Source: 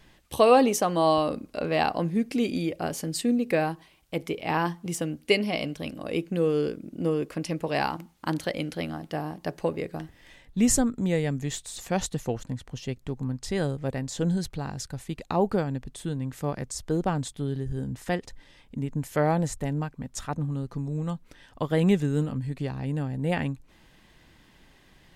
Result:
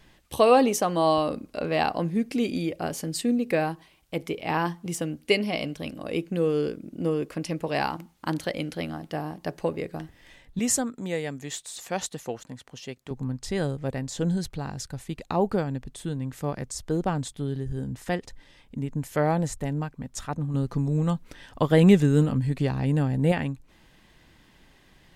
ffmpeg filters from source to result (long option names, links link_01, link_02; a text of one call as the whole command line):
ffmpeg -i in.wav -filter_complex "[0:a]asettb=1/sr,asplit=3[link_01][link_02][link_03];[link_01]atrim=end=10.594[link_04];[link_02]atrim=start=10.59:end=13.11,asetpts=PTS-STARTPTS,afade=type=in:duration=0.004:curve=qsin,afade=type=out:start_time=2.516:duration=0.004:curve=qsin,highpass=frequency=410:poles=1[link_05];[link_03]atrim=start=13.106[link_06];[link_04][link_05]acrossfade=duration=0.004:curve1=hsin:curve2=qsin[link_07];[link_07][link_06]acrossfade=duration=0.004:curve1=qsin:curve2=hsin,asettb=1/sr,asplit=3[link_08][link_09][link_10];[link_08]atrim=end=20.544[link_11];[link_09]atrim=start=20.54:end=23.32,asetpts=PTS-STARTPTS,afade=type=in:duration=0.004:curve=qsin,afade=type=out:start_time=2.776:duration=0.004:curve=qsin,acontrast=46[link_12];[link_10]atrim=start=23.316[link_13];[link_11][link_12]acrossfade=duration=0.004:curve1=hsin:curve2=qsin[link_14];[link_14][link_13]acrossfade=duration=0.004:curve1=qsin:curve2=hsin" out.wav